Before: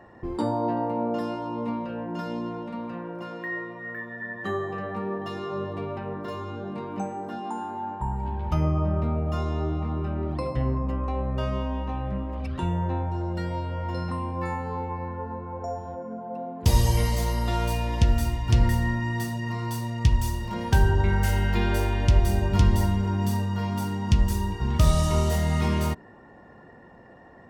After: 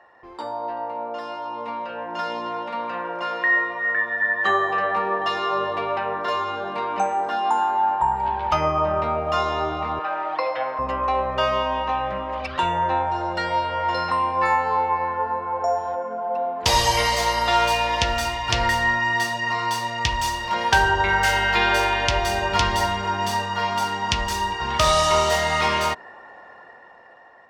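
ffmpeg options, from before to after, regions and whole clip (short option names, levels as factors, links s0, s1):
-filter_complex "[0:a]asettb=1/sr,asplit=3[s0][s1][s2];[s0]atrim=end=9.994[s3];[s1]atrim=start=9.99:end=10.79,asetpts=PTS-STARTPTS,afade=t=in:d=0.004:c=qsin,afade=t=out:st=0.796:d=0.004:c=qsin,aecho=1:1:6.3:0.74,atrim=end_sample=35280,aeval=exprs='sgn(val(0))*max(abs(val(0))-0.00178,0)':c=same,highpass=530,lowpass=3300[s4];[s2]atrim=start=10.786[s5];[s3][s4]acrossfade=d=0.004:c1=hsin:c2=qsin[s6];[s6][s5]acrossfade=d=0.004:c1=qsin:c2=hsin,acrossover=split=560 6500:gain=0.0708 1 0.178[s7][s8][s9];[s7][s8][s9]amix=inputs=3:normalize=0,dynaudnorm=f=610:g=7:m=4.47,volume=1.19"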